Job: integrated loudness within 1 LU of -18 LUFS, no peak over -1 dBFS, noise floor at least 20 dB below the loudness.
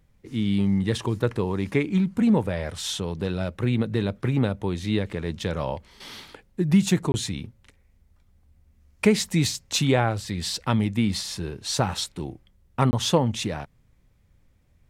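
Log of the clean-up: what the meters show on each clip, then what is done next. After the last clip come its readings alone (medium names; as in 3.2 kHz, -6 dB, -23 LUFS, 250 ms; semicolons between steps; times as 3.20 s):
dropouts 2; longest dropout 20 ms; loudness -25.0 LUFS; peak level -4.5 dBFS; loudness target -18.0 LUFS
-> interpolate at 7.12/12.91 s, 20 ms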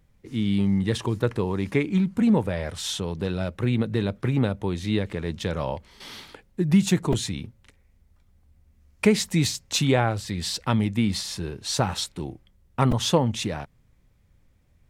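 dropouts 0; loudness -25.0 LUFS; peak level -4.5 dBFS; loudness target -18.0 LUFS
-> trim +7 dB; peak limiter -1 dBFS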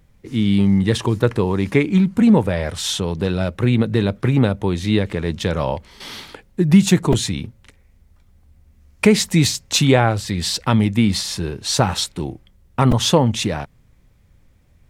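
loudness -18.0 LUFS; peak level -1.0 dBFS; noise floor -54 dBFS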